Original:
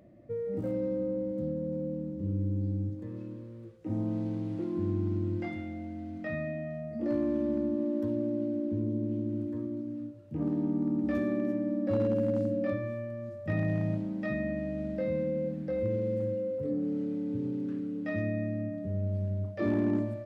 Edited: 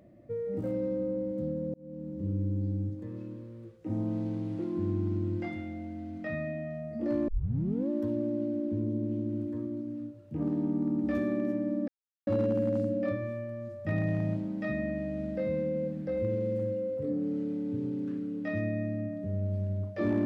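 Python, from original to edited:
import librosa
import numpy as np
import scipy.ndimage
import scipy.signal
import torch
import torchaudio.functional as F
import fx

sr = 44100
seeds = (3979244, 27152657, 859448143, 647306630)

y = fx.edit(x, sr, fx.fade_in_span(start_s=1.74, length_s=0.45),
    fx.tape_start(start_s=7.28, length_s=0.61),
    fx.insert_silence(at_s=11.88, length_s=0.39), tone=tone)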